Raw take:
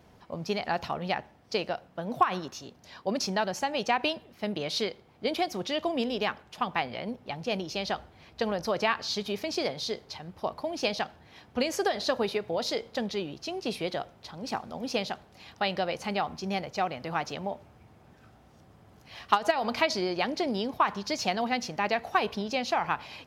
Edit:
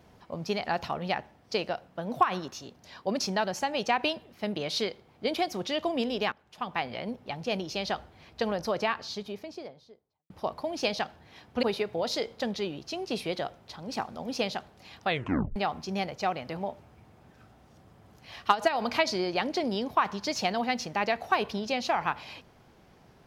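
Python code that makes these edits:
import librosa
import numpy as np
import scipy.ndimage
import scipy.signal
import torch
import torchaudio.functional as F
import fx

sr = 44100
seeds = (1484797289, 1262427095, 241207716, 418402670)

y = fx.studio_fade_out(x, sr, start_s=8.44, length_s=1.86)
y = fx.edit(y, sr, fx.fade_in_from(start_s=6.32, length_s=0.6, floor_db=-15.5),
    fx.cut(start_s=11.63, length_s=0.55),
    fx.tape_stop(start_s=15.6, length_s=0.51),
    fx.cut(start_s=17.12, length_s=0.28), tone=tone)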